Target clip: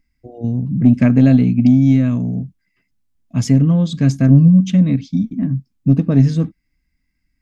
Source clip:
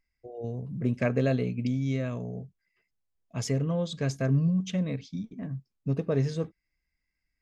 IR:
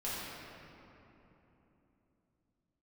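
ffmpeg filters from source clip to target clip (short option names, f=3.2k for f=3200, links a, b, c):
-af "lowshelf=f=340:t=q:w=3:g=7,acontrast=34,volume=2dB"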